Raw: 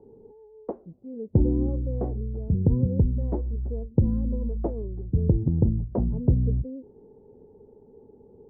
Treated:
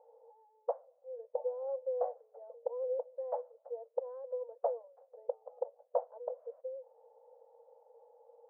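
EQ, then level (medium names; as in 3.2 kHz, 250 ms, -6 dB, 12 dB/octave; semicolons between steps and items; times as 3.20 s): brick-wall FIR high-pass 470 Hz; band-pass filter 650 Hz, Q 0.74; distance through air 460 m; +5.0 dB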